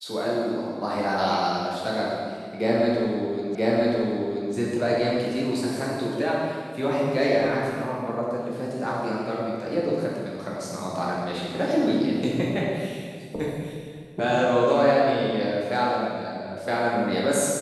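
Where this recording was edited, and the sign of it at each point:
0:03.55: the same again, the last 0.98 s

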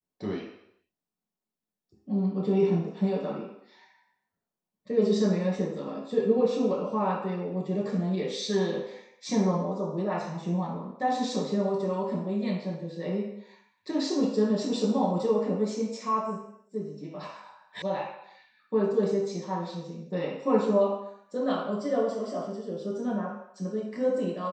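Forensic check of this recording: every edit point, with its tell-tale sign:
0:17.82: cut off before it has died away

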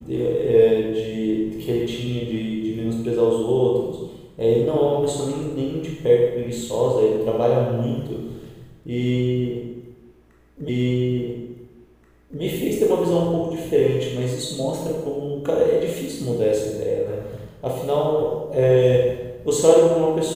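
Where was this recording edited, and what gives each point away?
0:10.69: the same again, the last 1.73 s

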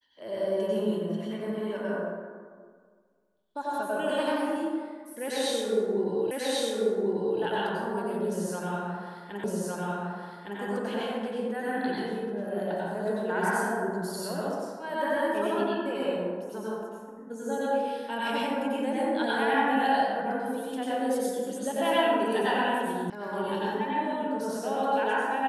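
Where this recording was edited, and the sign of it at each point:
0:06.31: the same again, the last 1.09 s
0:09.44: the same again, the last 1.16 s
0:23.10: cut off before it has died away

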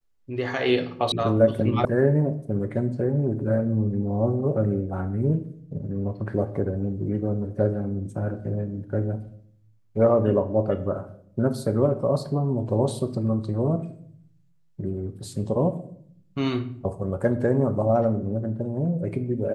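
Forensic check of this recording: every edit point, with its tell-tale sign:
0:01.12: cut off before it has died away
0:01.85: cut off before it has died away

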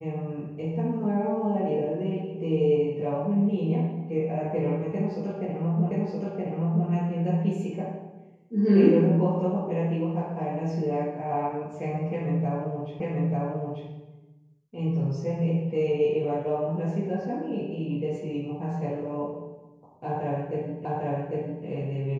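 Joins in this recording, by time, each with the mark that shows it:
0:05.91: the same again, the last 0.97 s
0:13.00: the same again, the last 0.89 s
0:20.85: the same again, the last 0.8 s

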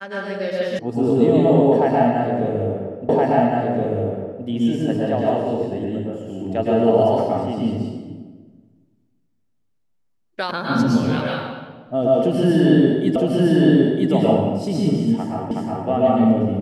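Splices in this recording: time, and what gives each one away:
0:00.79: cut off before it has died away
0:03.09: the same again, the last 1.37 s
0:10.51: cut off before it has died away
0:13.16: the same again, the last 0.96 s
0:15.51: the same again, the last 0.37 s

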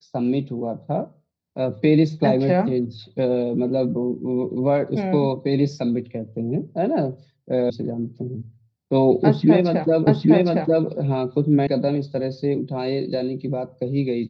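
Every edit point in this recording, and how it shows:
0:07.70: cut off before it has died away
0:10.07: the same again, the last 0.81 s
0:11.67: cut off before it has died away

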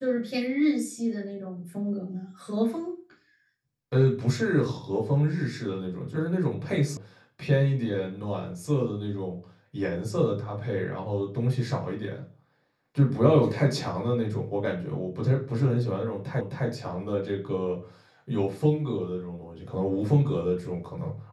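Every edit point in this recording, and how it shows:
0:06.97: cut off before it has died away
0:16.41: the same again, the last 0.26 s

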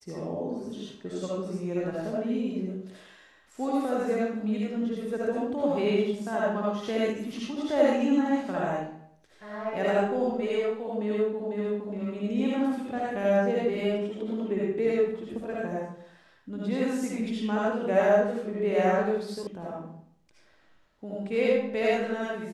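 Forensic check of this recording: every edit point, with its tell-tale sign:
0:19.47: cut off before it has died away

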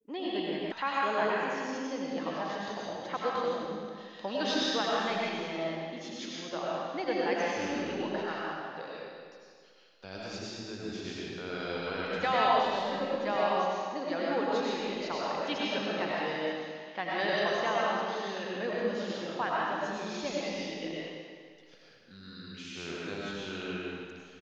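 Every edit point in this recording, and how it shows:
0:00.72: cut off before it has died away

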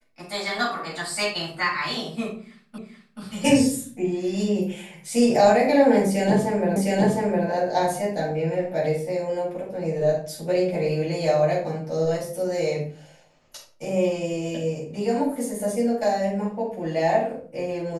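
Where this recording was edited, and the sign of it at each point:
0:02.78: the same again, the last 0.43 s
0:06.76: the same again, the last 0.71 s

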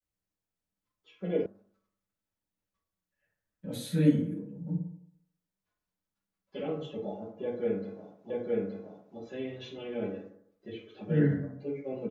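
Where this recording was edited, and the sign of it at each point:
0:01.46: cut off before it has died away
0:08.30: the same again, the last 0.87 s

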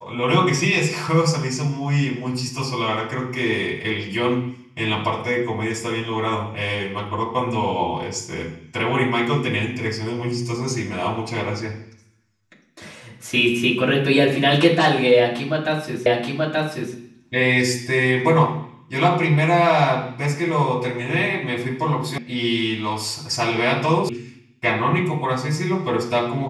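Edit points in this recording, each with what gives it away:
0:16.06: the same again, the last 0.88 s
0:22.18: cut off before it has died away
0:24.09: cut off before it has died away

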